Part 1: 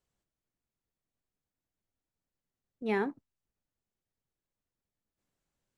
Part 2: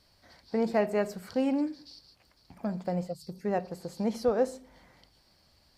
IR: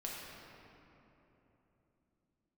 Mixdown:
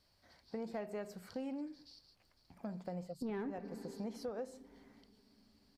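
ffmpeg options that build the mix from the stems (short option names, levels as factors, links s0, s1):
-filter_complex "[0:a]lowpass=3500,lowshelf=f=420:g=10.5,alimiter=limit=0.0891:level=0:latency=1,adelay=400,volume=0.794,asplit=2[s0][s1];[s1]volume=0.2[s2];[1:a]volume=0.376[s3];[2:a]atrim=start_sample=2205[s4];[s2][s4]afir=irnorm=-1:irlink=0[s5];[s0][s3][s5]amix=inputs=3:normalize=0,asoftclip=type=tanh:threshold=0.0668,acompressor=threshold=0.0112:ratio=5"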